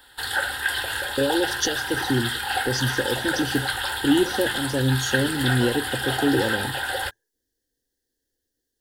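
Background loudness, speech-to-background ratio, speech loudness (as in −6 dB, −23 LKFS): −26.0 LKFS, 0.5 dB, −25.5 LKFS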